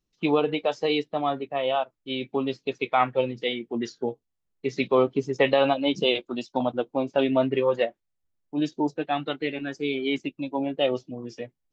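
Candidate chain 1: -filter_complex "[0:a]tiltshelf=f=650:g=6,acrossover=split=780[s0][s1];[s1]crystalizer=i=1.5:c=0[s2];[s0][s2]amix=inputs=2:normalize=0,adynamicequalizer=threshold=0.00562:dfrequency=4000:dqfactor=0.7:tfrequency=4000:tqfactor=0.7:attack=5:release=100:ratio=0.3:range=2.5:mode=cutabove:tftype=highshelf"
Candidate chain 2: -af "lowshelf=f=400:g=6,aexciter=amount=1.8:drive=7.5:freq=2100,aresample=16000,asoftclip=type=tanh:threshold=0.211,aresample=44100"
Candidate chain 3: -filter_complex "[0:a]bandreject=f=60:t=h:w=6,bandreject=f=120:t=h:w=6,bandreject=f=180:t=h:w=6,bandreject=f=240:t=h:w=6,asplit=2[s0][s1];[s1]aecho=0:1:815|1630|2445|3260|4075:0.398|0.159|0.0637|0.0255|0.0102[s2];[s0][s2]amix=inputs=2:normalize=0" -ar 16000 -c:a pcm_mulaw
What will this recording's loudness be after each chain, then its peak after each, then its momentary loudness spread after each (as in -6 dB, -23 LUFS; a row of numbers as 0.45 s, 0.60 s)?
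-25.0 LUFS, -25.0 LUFS, -26.0 LUFS; -7.0 dBFS, -13.0 dBFS, -8.0 dBFS; 9 LU, 7 LU, 8 LU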